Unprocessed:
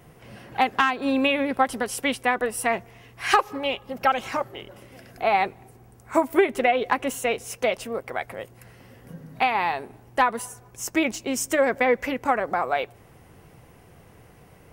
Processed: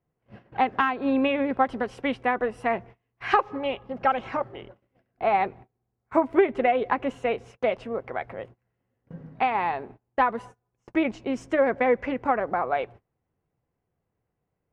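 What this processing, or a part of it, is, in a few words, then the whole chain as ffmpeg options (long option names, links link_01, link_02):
phone in a pocket: -af "lowpass=3500,highshelf=frequency=2300:gain=-10,agate=range=-28dB:threshold=-43dB:ratio=16:detection=peak"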